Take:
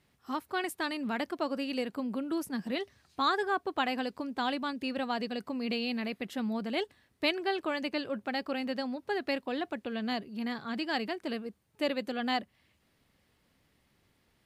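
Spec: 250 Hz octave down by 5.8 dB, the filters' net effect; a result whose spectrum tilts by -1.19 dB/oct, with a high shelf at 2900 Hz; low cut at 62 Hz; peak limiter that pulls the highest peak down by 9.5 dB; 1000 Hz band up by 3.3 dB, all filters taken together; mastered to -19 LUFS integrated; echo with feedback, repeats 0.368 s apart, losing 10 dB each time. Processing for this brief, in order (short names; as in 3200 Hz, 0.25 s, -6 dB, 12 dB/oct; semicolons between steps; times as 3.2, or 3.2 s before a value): HPF 62 Hz; bell 250 Hz -7 dB; bell 1000 Hz +5.5 dB; high shelf 2900 Hz -4.5 dB; limiter -23.5 dBFS; feedback echo 0.368 s, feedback 32%, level -10 dB; gain +17 dB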